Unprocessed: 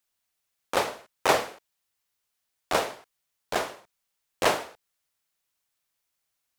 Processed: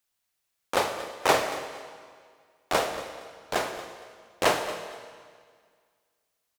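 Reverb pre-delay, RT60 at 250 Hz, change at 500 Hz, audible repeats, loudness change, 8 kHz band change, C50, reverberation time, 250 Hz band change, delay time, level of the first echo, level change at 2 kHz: 28 ms, 1.9 s, +1.0 dB, 2, −0.5 dB, +1.0 dB, 8.0 dB, 1.9 s, +1.0 dB, 232 ms, −15.5 dB, +1.0 dB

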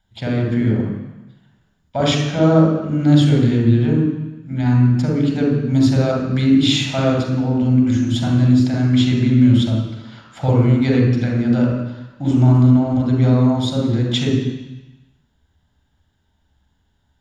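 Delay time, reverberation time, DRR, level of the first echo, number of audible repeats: no echo audible, 1.0 s, −0.5 dB, no echo audible, no echo audible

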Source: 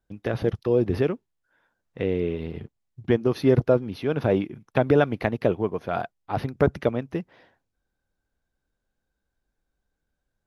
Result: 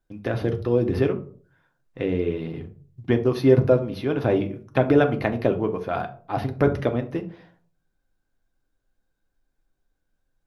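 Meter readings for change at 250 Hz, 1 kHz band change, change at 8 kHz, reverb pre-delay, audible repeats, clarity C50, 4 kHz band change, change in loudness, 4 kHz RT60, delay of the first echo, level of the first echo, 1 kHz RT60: +2.0 dB, +1.0 dB, can't be measured, 3 ms, no echo audible, 14.0 dB, +1.0 dB, +1.5 dB, 0.25 s, no echo audible, no echo audible, 0.40 s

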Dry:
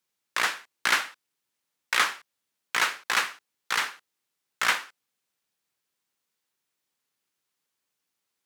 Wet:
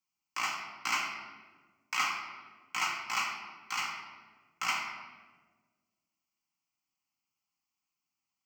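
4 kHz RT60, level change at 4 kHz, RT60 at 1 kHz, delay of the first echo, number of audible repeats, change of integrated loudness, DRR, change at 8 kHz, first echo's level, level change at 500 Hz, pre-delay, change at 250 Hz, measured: 0.90 s, −7.5 dB, 1.3 s, no echo audible, no echo audible, −7.5 dB, −1.0 dB, −6.5 dB, no echo audible, −12.5 dB, 4 ms, −5.5 dB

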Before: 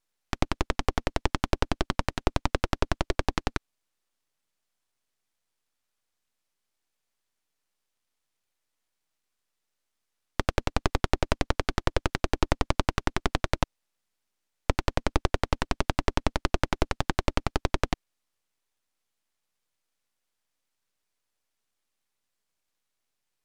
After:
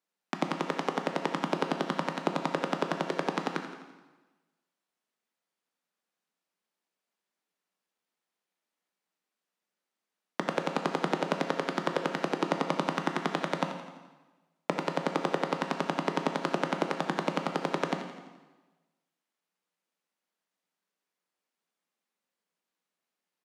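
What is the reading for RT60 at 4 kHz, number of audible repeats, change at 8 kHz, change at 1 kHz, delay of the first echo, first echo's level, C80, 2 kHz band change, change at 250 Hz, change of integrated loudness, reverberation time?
1.1 s, 2, −6.5 dB, +0.5 dB, 85 ms, −12.5 dB, 7.5 dB, −1.5 dB, 0.0 dB, −1.5 dB, 1.2 s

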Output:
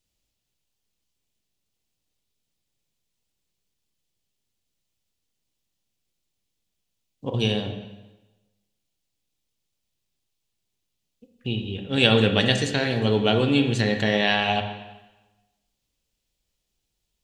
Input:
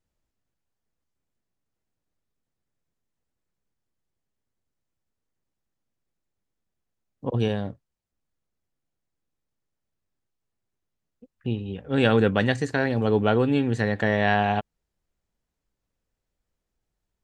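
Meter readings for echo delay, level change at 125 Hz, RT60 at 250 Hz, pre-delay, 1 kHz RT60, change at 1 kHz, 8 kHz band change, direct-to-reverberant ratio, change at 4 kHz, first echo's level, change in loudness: no echo audible, +1.0 dB, 1.1 s, 8 ms, 1.1 s, −1.5 dB, can't be measured, 5.0 dB, +12.0 dB, no echo audible, +1.5 dB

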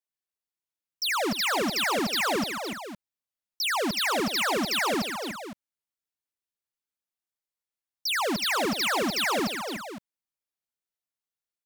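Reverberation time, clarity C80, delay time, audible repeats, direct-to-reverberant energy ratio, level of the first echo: no reverb audible, no reverb audible, 80 ms, 4, no reverb audible, −19.0 dB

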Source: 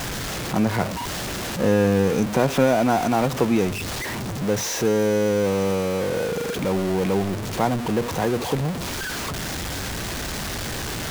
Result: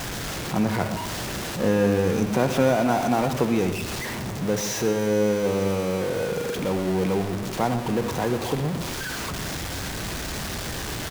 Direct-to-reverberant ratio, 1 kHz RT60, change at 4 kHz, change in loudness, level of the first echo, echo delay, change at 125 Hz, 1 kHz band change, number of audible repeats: 8.5 dB, 1.4 s, −2.0 dB, −2.0 dB, −13.5 dB, 123 ms, −1.5 dB, −2.0 dB, 1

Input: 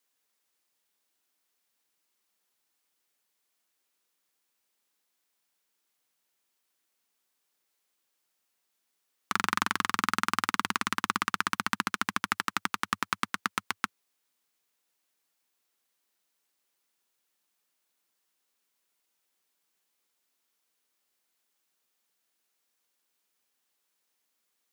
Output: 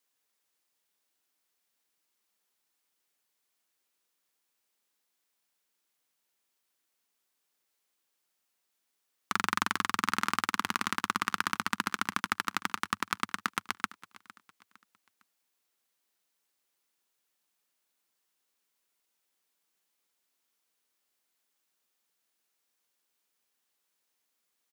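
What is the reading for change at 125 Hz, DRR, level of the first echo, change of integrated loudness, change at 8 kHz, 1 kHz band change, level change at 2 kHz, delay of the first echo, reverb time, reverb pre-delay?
−1.5 dB, no reverb audible, −19.5 dB, −1.5 dB, −1.5 dB, −1.5 dB, −1.5 dB, 457 ms, no reverb audible, no reverb audible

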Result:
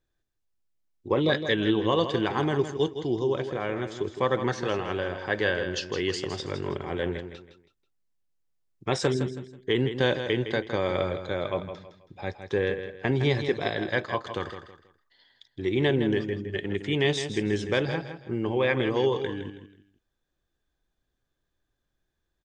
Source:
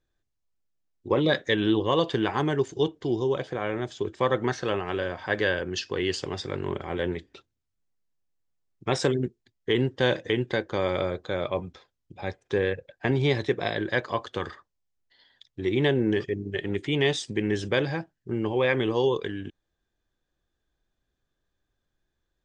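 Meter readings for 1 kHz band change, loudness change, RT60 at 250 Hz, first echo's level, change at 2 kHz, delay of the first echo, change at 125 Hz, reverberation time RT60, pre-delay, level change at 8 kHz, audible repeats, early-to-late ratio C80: −0.5 dB, −0.5 dB, no reverb audible, −9.5 dB, −0.5 dB, 162 ms, 0.0 dB, no reverb audible, no reverb audible, −0.5 dB, 3, no reverb audible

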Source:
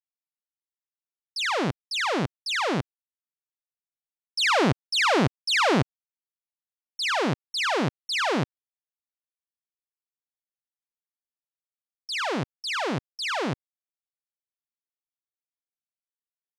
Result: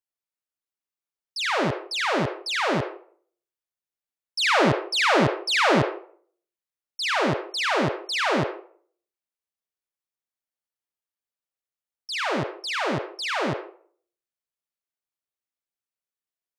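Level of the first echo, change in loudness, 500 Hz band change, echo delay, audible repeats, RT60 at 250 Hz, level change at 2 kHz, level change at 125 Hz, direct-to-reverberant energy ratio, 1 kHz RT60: no echo audible, +1.5 dB, +3.5 dB, no echo audible, no echo audible, 0.60 s, +2.0 dB, 0.0 dB, 2.0 dB, 0.50 s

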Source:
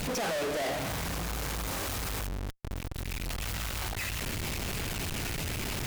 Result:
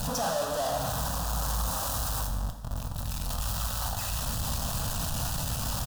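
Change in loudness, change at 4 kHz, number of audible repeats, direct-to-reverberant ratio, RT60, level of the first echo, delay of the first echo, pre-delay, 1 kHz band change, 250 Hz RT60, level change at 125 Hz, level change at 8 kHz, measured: +3.0 dB, +1.0 dB, 1, 4.0 dB, 0.80 s, −14.0 dB, 148 ms, 8 ms, +5.0 dB, 0.75 s, +3.5 dB, +4.5 dB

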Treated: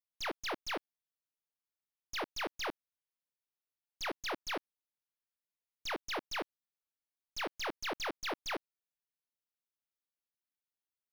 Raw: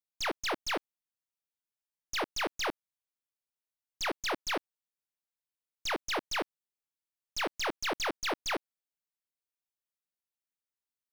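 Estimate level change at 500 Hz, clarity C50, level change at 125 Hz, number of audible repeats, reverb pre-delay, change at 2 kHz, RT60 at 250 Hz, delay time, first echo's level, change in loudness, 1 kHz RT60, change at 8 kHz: −5.0 dB, no reverb audible, −5.0 dB, no echo audible, no reverb audible, −5.0 dB, no reverb audible, no echo audible, no echo audible, −5.0 dB, no reverb audible, −7.5 dB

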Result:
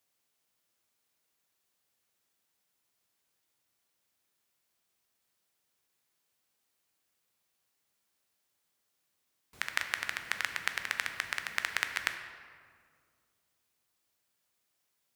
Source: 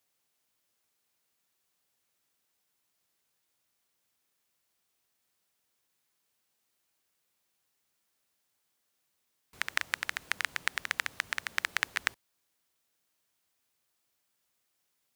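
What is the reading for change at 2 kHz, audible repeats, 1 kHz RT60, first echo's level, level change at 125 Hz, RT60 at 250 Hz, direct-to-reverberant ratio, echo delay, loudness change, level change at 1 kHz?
−0.5 dB, no echo audible, 1.9 s, no echo audible, 0.0 dB, 2.5 s, 6.5 dB, no echo audible, −1.0 dB, −0.5 dB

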